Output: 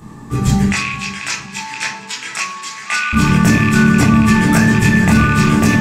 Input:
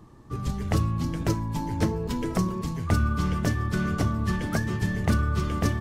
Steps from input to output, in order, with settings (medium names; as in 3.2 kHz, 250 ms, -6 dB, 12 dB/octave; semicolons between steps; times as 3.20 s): rattle on loud lows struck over -22 dBFS, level -25 dBFS; 0.69–3.13 s: Butterworth band-pass 3.4 kHz, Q 0.59; tape echo 462 ms, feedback 68%, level -14.5 dB, low-pass 4.6 kHz; reverberation RT60 0.45 s, pre-delay 17 ms, DRR -4 dB; loudness maximiser +16 dB; trim -1 dB